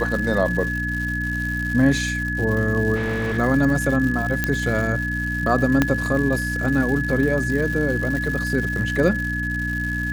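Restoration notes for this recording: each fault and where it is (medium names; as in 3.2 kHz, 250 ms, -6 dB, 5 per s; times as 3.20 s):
crackle 250 per s -28 dBFS
hum 60 Hz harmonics 5 -27 dBFS
whine 1.7 kHz -25 dBFS
2.95–3.39 s: clipped -20.5 dBFS
4.44 s: pop -6 dBFS
5.82 s: pop -4 dBFS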